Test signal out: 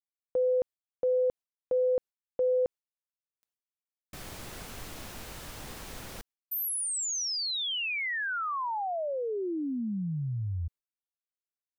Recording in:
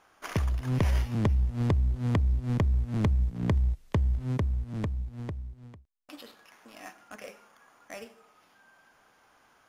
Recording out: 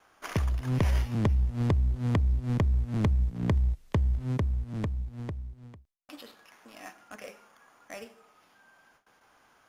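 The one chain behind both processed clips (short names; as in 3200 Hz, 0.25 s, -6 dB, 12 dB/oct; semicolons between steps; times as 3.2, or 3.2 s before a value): gate with hold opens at -53 dBFS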